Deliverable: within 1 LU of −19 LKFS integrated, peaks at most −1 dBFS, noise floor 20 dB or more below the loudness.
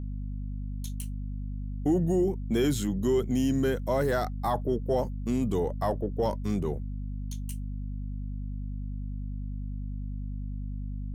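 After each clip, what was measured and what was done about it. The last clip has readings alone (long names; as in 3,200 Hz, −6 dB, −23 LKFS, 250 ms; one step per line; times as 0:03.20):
mains hum 50 Hz; hum harmonics up to 250 Hz; level of the hum −32 dBFS; integrated loudness −31.0 LKFS; sample peak −15.0 dBFS; target loudness −19.0 LKFS
→ mains-hum notches 50/100/150/200/250 Hz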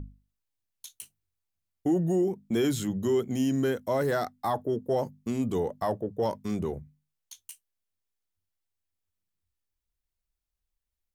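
mains hum none found; integrated loudness −29.0 LKFS; sample peak −17.0 dBFS; target loudness −19.0 LKFS
→ level +10 dB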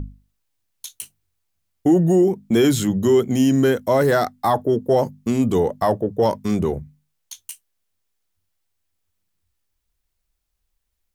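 integrated loudness −19.0 LKFS; sample peak −7.0 dBFS; background noise floor −75 dBFS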